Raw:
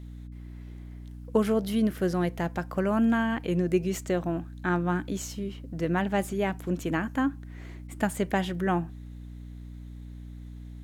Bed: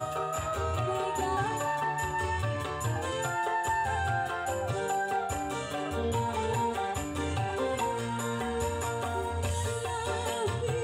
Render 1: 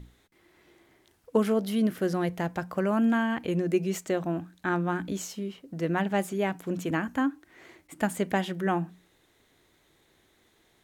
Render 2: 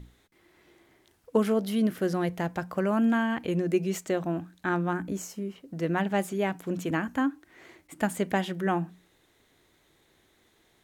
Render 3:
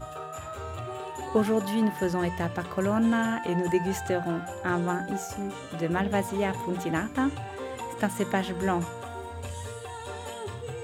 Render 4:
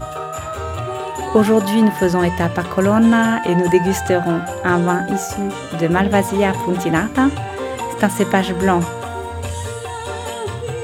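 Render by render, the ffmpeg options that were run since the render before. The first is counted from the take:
-af "bandreject=f=60:t=h:w=6,bandreject=f=120:t=h:w=6,bandreject=f=180:t=h:w=6,bandreject=f=240:t=h:w=6,bandreject=f=300:t=h:w=6"
-filter_complex "[0:a]asettb=1/sr,asplit=3[a][b][c];[a]atrim=end=4.934[d];[b]atrim=start=4.93:end=5.56,asetpts=PTS-STARTPTS,afade=t=in:d=0.004:c=qsin,afade=t=out:st=0.626:d=0.004:c=qsin,equalizer=f=3.6k:w=1.6:g=-11.5[e];[c]atrim=start=5.556[f];[d][e]acrossfade=d=0.004:c1=hsin:c2=qsin[g];[g][f]acrossfade=d=0.004:c1=qsin:c2=hsin"
-filter_complex "[1:a]volume=-6dB[a];[0:a][a]amix=inputs=2:normalize=0"
-af "volume=11.5dB,alimiter=limit=-2dB:level=0:latency=1"

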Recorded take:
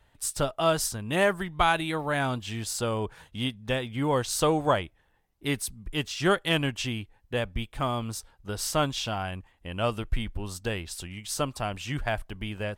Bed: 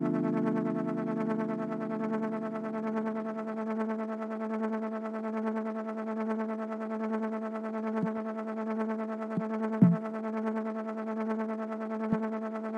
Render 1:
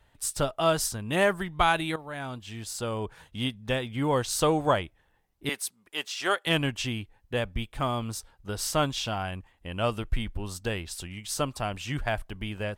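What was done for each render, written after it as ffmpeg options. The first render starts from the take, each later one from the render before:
-filter_complex "[0:a]asettb=1/sr,asplit=3[a][b][c];[a]atrim=end=5.494[d];[b]atrim=start=5.49:end=6.47,asetpts=PTS-STARTPTS,afade=t=in:d=0.004:c=qsin,afade=t=out:st=0.976:d=0.004:c=qsin,highpass=550[e];[c]atrim=start=6.466[f];[d][e]acrossfade=d=0.004:c1=hsin:c2=qsin[g];[g][f]acrossfade=d=0.004:c1=qsin:c2=hsin,asplit=2[h][i];[h]atrim=end=1.96,asetpts=PTS-STARTPTS,afade=t=out:st=1.956:d=0.004:c=hsin:silence=0.237137[j];[i]atrim=start=1.96,asetpts=PTS-STARTPTS,afade=t=in:d=1.49:silence=0.237137[k];[j][k]concat=n=2:v=0:a=1"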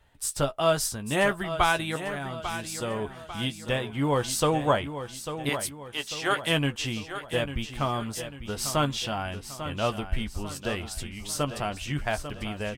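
-filter_complex "[0:a]asplit=2[a][b];[b]adelay=14,volume=-9.5dB[c];[a][c]amix=inputs=2:normalize=0,asplit=2[d][e];[e]aecho=0:1:846|1692|2538|3384|4230:0.299|0.134|0.0605|0.0272|0.0122[f];[d][f]amix=inputs=2:normalize=0"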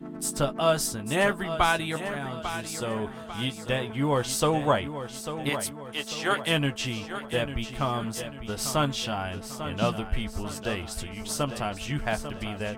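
-filter_complex "[1:a]volume=-9.5dB[a];[0:a][a]amix=inputs=2:normalize=0"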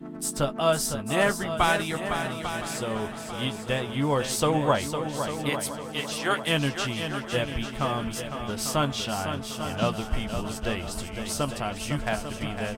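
-af "aecho=1:1:506|1012|1518|2024|2530:0.398|0.163|0.0669|0.0274|0.0112"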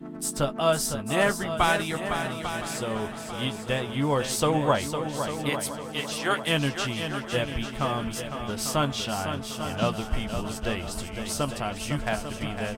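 -af anull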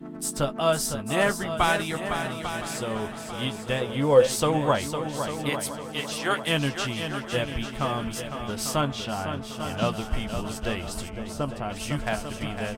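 -filter_complex "[0:a]asettb=1/sr,asplit=3[a][b][c];[a]atrim=end=3.814[d];[b]atrim=start=3.81:end=4.27,asetpts=PTS-STARTPTS,afade=t=in:d=0.004:c=qsin,afade=t=out:st=0.456:d=0.004:c=qsin,equalizer=f=510:w=6.3:g=15[e];[c]atrim=start=4.266[f];[d][e]acrossfade=d=0.004:c1=hsin:c2=qsin[g];[g][f]acrossfade=d=0.004:c1=qsin:c2=hsin,asettb=1/sr,asplit=3[h][i][j];[h]atrim=end=8.814[k];[i]atrim=start=8.81:end=9.6,asetpts=PTS-STARTPTS,afade=t=in:d=0.004:c=qsin,afade=t=out:st=0.786:d=0.004:c=qsin,highshelf=f=3.7k:g=-7[l];[j]atrim=start=9.596[m];[k][l]acrossfade=d=0.004:c1=hsin:c2=qsin[n];[n][m]acrossfade=d=0.004:c1=qsin:c2=hsin,asplit=3[o][p][q];[o]afade=t=out:st=11.09:d=0.02[r];[p]highshelf=f=2.3k:g=-12,afade=t=in:st=11.09:d=0.02,afade=t=out:st=11.69:d=0.02[s];[q]afade=t=in:st=11.69:d=0.02[t];[r][s][t]amix=inputs=3:normalize=0"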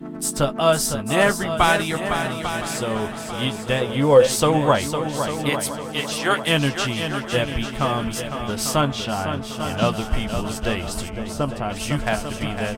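-af "volume=5.5dB,alimiter=limit=-3dB:level=0:latency=1"

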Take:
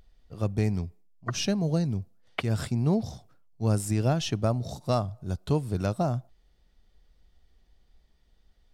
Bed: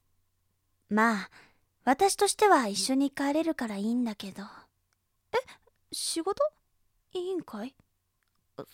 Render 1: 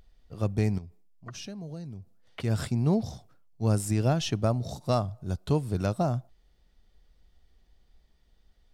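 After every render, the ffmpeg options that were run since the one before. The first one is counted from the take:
-filter_complex "[0:a]asettb=1/sr,asplit=3[a][b][c];[a]atrim=end=0.784[d];[b]atrim=start=0.78:end=2.4,asetpts=PTS-STARTPTS,afade=t=in:d=0.004:c=qsin,afade=t=out:st=1.616:d=0.004:c=qsin,acompressor=threshold=-43dB:ratio=2.5:attack=3.2:release=140:knee=1:detection=peak[e];[c]atrim=start=2.396[f];[d][e]acrossfade=d=0.004:c1=hsin:c2=qsin[g];[g][f]acrossfade=d=0.004:c1=qsin:c2=hsin"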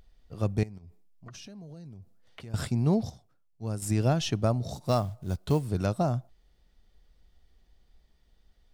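-filter_complex "[0:a]asettb=1/sr,asplit=3[a][b][c];[a]atrim=end=0.634[d];[b]atrim=start=0.63:end=2.54,asetpts=PTS-STARTPTS,afade=t=in:d=0.004:c=qsin,afade=t=out:st=1.906:d=0.004:c=qsin,acompressor=threshold=-42dB:ratio=5:attack=3.2:release=140:knee=1:detection=peak[e];[c]atrim=start=2.536[f];[d][e]acrossfade=d=0.004:c1=hsin:c2=qsin[g];[g][f]acrossfade=d=0.004:c1=qsin:c2=hsin,asettb=1/sr,asplit=3[h][i][j];[h]atrim=end=4.734[k];[i]atrim=start=4.73:end=5.67,asetpts=PTS-STARTPTS,afade=t=in:d=0.004:c=qsin,afade=t=out:st=0.936:d=0.004:c=qsin,acrusher=bits=7:mode=log:mix=0:aa=0.000001[l];[j]atrim=start=5.666[m];[k][l]acrossfade=d=0.004:c1=hsin:c2=qsin[n];[n][m]acrossfade=d=0.004:c1=qsin:c2=hsin,asplit=3[o][p][q];[o]atrim=end=3.102[r];[p]atrim=start=3.098:end=3.822,asetpts=PTS-STARTPTS,volume=-8.5dB[s];[q]atrim=start=3.818[t];[r][s]acrossfade=d=0.004:c1=hsin:c2=hsin[u];[u][t]acrossfade=d=0.004:c1=hsin:c2=hsin"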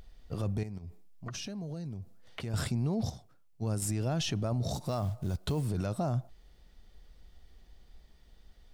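-filter_complex "[0:a]asplit=2[a][b];[b]acompressor=threshold=-33dB:ratio=6,volume=0dB[c];[a][c]amix=inputs=2:normalize=0,alimiter=limit=-24dB:level=0:latency=1:release=21"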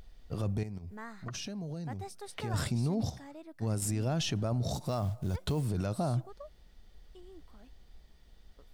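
-filter_complex "[1:a]volume=-21dB[a];[0:a][a]amix=inputs=2:normalize=0"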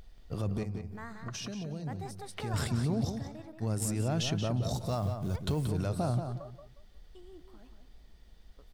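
-filter_complex "[0:a]asplit=2[a][b];[b]adelay=180,lowpass=f=3.9k:p=1,volume=-7dB,asplit=2[c][d];[d]adelay=180,lowpass=f=3.9k:p=1,volume=0.26,asplit=2[e][f];[f]adelay=180,lowpass=f=3.9k:p=1,volume=0.26[g];[a][c][e][g]amix=inputs=4:normalize=0"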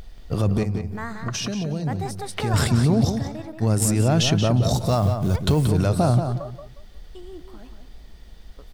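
-af "volume=12dB"

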